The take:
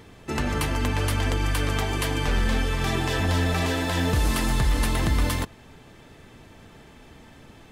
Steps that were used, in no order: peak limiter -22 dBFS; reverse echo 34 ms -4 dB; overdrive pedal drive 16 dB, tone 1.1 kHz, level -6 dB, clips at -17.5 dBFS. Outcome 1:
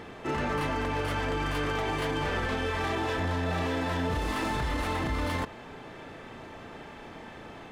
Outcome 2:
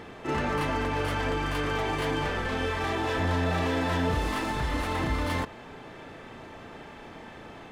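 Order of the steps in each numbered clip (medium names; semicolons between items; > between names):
overdrive pedal > reverse echo > peak limiter; overdrive pedal > peak limiter > reverse echo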